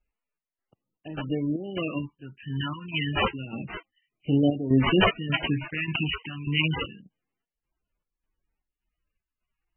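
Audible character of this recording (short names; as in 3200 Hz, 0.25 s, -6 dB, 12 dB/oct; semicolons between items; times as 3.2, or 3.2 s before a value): phasing stages 2, 0.28 Hz, lowest notch 530–1600 Hz; chopped level 1.7 Hz, depth 65%, duty 65%; aliases and images of a low sample rate 8700 Hz, jitter 20%; MP3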